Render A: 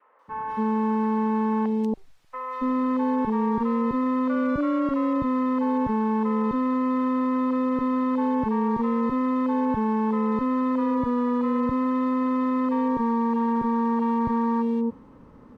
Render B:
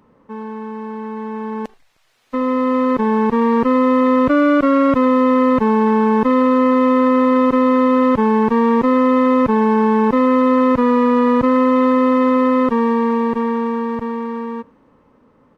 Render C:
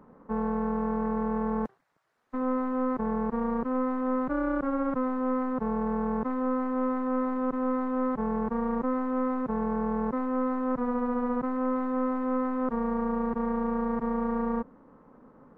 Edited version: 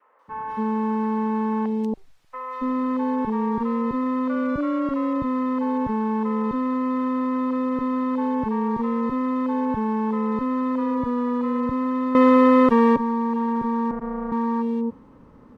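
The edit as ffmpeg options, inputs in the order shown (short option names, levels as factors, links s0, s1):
-filter_complex "[0:a]asplit=3[s0][s1][s2];[s0]atrim=end=12.152[s3];[1:a]atrim=start=12.148:end=12.962[s4];[s1]atrim=start=12.958:end=13.912[s5];[2:a]atrim=start=13.908:end=14.322[s6];[s2]atrim=start=14.318[s7];[s3][s4]acrossfade=d=0.004:c1=hsin:c2=hsin[s8];[s8][s5]acrossfade=d=0.004:c1=hsin:c2=hsin[s9];[s9][s6]acrossfade=d=0.004:c1=hsin:c2=hsin[s10];[s10][s7]acrossfade=d=0.004:c1=hsin:c2=hsin"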